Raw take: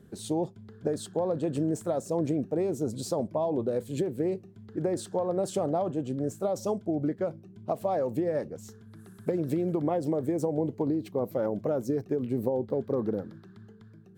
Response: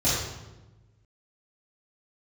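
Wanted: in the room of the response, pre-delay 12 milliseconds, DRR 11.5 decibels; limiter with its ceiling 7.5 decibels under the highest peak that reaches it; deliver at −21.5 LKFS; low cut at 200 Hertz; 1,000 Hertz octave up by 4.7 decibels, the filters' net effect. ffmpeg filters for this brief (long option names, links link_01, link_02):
-filter_complex "[0:a]highpass=200,equalizer=frequency=1000:width_type=o:gain=7,alimiter=limit=-20.5dB:level=0:latency=1,asplit=2[link_01][link_02];[1:a]atrim=start_sample=2205,adelay=12[link_03];[link_02][link_03]afir=irnorm=-1:irlink=0,volume=-25.5dB[link_04];[link_01][link_04]amix=inputs=2:normalize=0,volume=9dB"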